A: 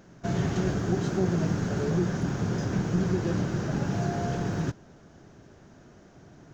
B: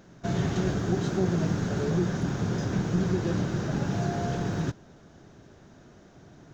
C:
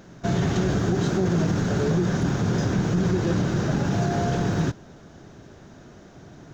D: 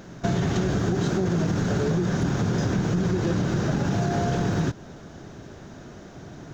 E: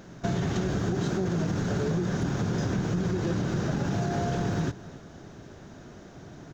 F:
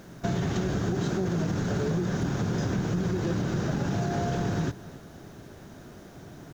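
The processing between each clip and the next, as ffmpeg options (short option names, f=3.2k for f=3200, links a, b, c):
-af "equalizer=f=3.7k:w=5.2:g=4.5"
-af "alimiter=limit=-20.5dB:level=0:latency=1:release=23,volume=6dB"
-af "acompressor=threshold=-25dB:ratio=4,volume=4dB"
-af "aecho=1:1:275:0.119,volume=-4dB"
-af "acrusher=bits=9:mix=0:aa=0.000001"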